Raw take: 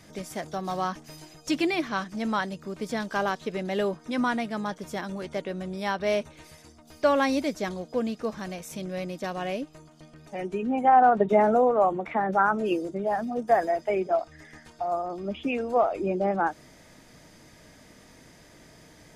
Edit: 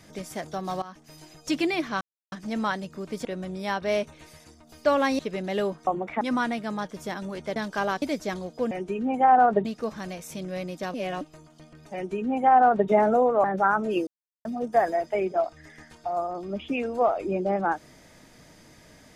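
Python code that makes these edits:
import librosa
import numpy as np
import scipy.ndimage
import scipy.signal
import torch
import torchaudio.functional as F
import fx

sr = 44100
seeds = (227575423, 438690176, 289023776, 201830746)

y = fx.edit(x, sr, fx.fade_in_from(start_s=0.82, length_s=0.52, floor_db=-18.0),
    fx.insert_silence(at_s=2.01, length_s=0.31),
    fx.swap(start_s=2.94, length_s=0.46, other_s=5.43, other_length_s=1.94),
    fx.reverse_span(start_s=9.35, length_s=0.27),
    fx.duplicate(start_s=10.35, length_s=0.94, to_s=8.06),
    fx.move(start_s=11.85, length_s=0.34, to_s=4.08),
    fx.silence(start_s=12.82, length_s=0.38), tone=tone)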